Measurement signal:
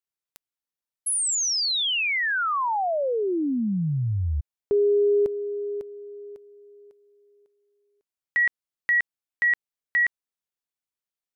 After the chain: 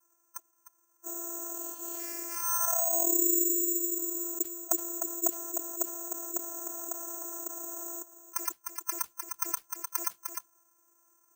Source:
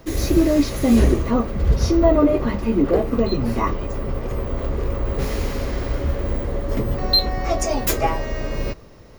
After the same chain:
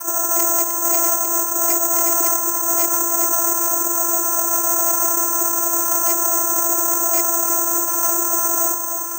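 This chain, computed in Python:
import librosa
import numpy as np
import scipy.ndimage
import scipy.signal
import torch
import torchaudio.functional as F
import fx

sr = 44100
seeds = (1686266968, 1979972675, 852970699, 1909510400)

p1 = fx.spec_clip(x, sr, under_db=25)
p2 = scipy.signal.sosfilt(scipy.signal.ellip(4, 1.0, 40, 1100.0, 'lowpass', fs=sr, output='sos'), p1)
p3 = fx.spec_gate(p2, sr, threshold_db=-10, keep='weak')
p4 = fx.rider(p3, sr, range_db=4, speed_s=2.0)
p5 = fx.vocoder(p4, sr, bands=8, carrier='saw', carrier_hz=341.0)
p6 = fx.fold_sine(p5, sr, drive_db=16, ceiling_db=-10.0)
p7 = fx.mod_noise(p6, sr, seeds[0], snr_db=30)
p8 = p7 + fx.echo_single(p7, sr, ms=304, db=-19.5, dry=0)
p9 = (np.kron(scipy.signal.resample_poly(p8, 1, 6), np.eye(6)[0]) * 6)[:len(p8)]
p10 = fx.env_flatten(p9, sr, amount_pct=70)
y = p10 * librosa.db_to_amplitude(-11.0)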